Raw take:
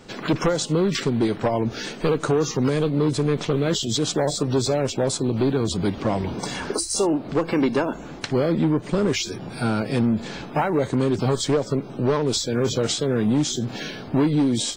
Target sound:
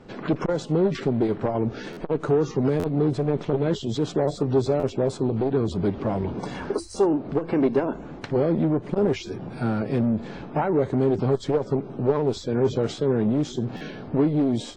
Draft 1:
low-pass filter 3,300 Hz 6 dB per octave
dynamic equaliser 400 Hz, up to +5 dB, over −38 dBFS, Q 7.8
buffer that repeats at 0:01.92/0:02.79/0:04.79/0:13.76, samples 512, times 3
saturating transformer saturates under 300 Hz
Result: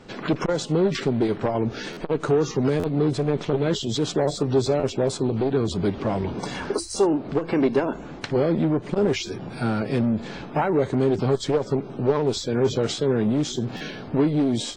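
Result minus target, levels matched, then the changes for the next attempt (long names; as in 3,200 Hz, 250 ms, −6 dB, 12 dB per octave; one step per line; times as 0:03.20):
4,000 Hz band +7.0 dB
change: low-pass filter 1,100 Hz 6 dB per octave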